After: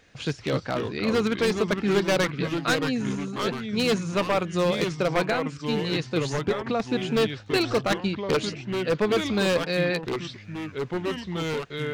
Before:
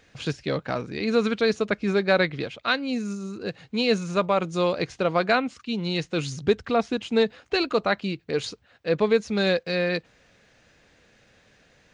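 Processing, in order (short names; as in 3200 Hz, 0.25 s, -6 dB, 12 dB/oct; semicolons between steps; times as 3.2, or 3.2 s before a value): 5.24–6.8 compressor 12:1, threshold -22 dBFS, peak gain reduction 8.5 dB; 7.87–8.37 transient shaper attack +9 dB, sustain -7 dB; wavefolder -16 dBFS; echoes that change speed 0.209 s, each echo -3 st, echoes 3, each echo -6 dB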